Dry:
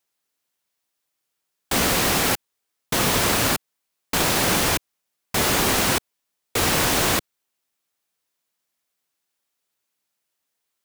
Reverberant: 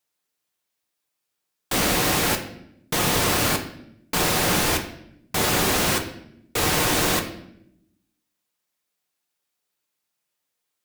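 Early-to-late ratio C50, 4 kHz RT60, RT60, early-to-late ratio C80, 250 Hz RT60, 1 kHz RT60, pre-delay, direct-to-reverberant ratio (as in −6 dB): 10.0 dB, 0.60 s, 0.75 s, 13.0 dB, 1.2 s, 0.65 s, 6 ms, 3.0 dB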